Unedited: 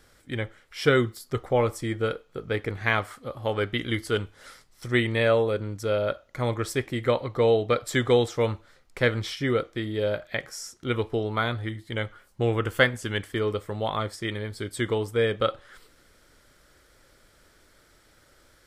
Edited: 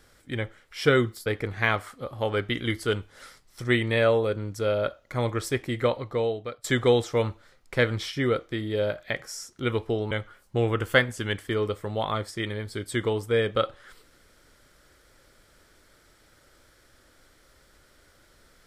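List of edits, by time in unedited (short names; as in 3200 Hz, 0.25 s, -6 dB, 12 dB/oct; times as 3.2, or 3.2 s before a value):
1.26–2.5 cut
7.04–7.88 fade out, to -21 dB
11.35–11.96 cut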